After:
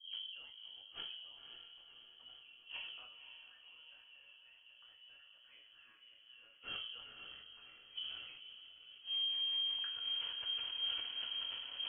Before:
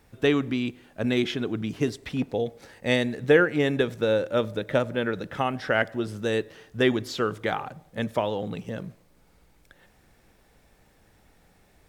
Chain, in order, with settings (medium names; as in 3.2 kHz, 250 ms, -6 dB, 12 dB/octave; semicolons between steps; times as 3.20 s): spectral replace 4.72–4.96 s, 330–890 Hz before; compression 10:1, threshold -36 dBFS, peak gain reduction 22.5 dB; rotary cabinet horn 5.5 Hz; phase dispersion highs, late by 136 ms, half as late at 310 Hz; inverted gate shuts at -43 dBFS, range -32 dB; echo that smears into a reverb 526 ms, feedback 53%, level -7 dB; reverberation RT60 0.40 s, pre-delay 4 ms, DRR 1 dB; frequency inversion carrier 3.2 kHz; decay stretcher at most 35 dB/s; trim +6 dB